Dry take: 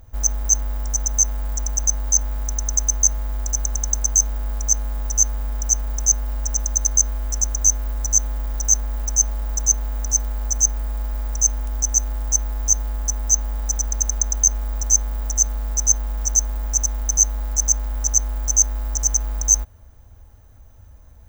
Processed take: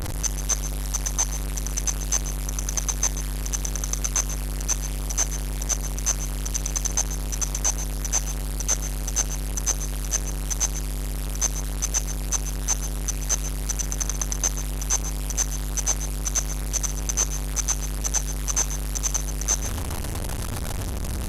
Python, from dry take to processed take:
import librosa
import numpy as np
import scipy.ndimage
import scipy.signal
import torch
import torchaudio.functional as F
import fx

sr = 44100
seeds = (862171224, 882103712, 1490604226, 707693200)

y = fx.delta_mod(x, sr, bps=64000, step_db=-16.5)
y = y + 10.0 ** (-12.0 / 20.0) * np.pad(y, (int(136 * sr / 1000.0), 0))[:len(y)]
y = y * 10.0 ** (-5.5 / 20.0)